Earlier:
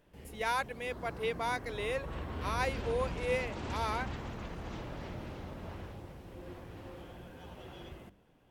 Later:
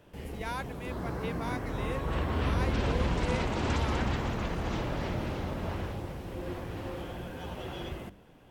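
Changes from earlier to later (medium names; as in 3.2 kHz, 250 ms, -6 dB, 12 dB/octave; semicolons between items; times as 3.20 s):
speech -5.0 dB; background +9.5 dB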